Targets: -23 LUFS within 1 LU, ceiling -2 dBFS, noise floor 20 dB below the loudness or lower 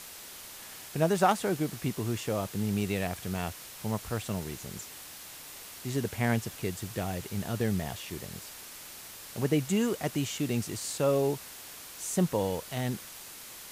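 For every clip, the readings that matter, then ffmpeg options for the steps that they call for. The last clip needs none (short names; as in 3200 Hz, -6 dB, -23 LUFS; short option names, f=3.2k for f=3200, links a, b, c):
noise floor -46 dBFS; noise floor target -52 dBFS; loudness -31.5 LUFS; peak -12.0 dBFS; loudness target -23.0 LUFS
-> -af "afftdn=nr=6:nf=-46"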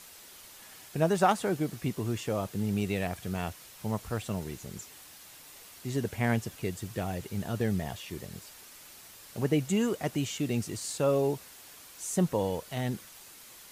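noise floor -51 dBFS; noise floor target -52 dBFS
-> -af "afftdn=nr=6:nf=-51"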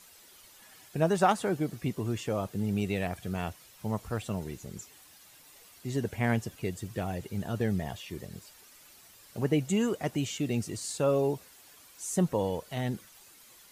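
noise floor -56 dBFS; loudness -31.5 LUFS; peak -12.0 dBFS; loudness target -23.0 LUFS
-> -af "volume=8.5dB"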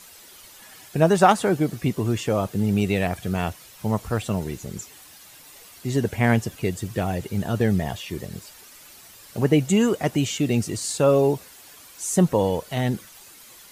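loudness -23.0 LUFS; peak -3.5 dBFS; noise floor -47 dBFS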